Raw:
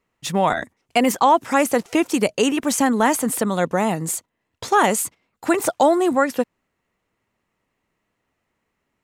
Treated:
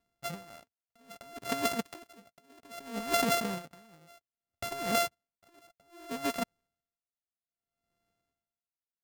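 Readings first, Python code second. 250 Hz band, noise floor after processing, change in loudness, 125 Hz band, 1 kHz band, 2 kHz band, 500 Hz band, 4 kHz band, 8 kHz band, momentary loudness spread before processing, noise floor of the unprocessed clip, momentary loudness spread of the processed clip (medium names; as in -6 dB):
-19.0 dB, under -85 dBFS, -13.0 dB, -15.5 dB, -17.0 dB, -13.5 dB, -17.0 dB, -8.5 dB, -15.0 dB, 10 LU, -76 dBFS, 21 LU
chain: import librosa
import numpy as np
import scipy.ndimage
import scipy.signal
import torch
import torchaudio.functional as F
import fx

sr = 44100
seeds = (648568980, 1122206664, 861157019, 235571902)

y = np.r_[np.sort(x[:len(x) // 64 * 64].reshape(-1, 64), axis=1).ravel(), x[len(x) // 64 * 64:]]
y = fx.leveller(y, sr, passes=1)
y = fx.over_compress(y, sr, threshold_db=-19.0, ratio=-0.5)
y = y * 10.0 ** (-32 * (0.5 - 0.5 * np.cos(2.0 * np.pi * 0.62 * np.arange(len(y)) / sr)) / 20.0)
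y = F.gain(torch.from_numpy(y), -8.5).numpy()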